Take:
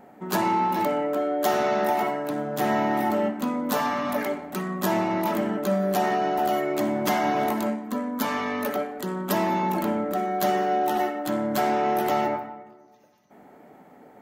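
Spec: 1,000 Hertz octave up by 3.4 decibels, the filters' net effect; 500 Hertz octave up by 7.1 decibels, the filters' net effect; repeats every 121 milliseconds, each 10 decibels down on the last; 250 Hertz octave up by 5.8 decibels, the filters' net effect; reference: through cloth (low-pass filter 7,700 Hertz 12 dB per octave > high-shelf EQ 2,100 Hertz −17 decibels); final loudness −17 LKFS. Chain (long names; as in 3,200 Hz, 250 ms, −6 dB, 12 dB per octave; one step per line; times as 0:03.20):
low-pass filter 7,700 Hz 12 dB per octave
parametric band 250 Hz +5 dB
parametric band 500 Hz +8.5 dB
parametric band 1,000 Hz +3.5 dB
high-shelf EQ 2,100 Hz −17 dB
repeating echo 121 ms, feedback 32%, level −10 dB
level +2.5 dB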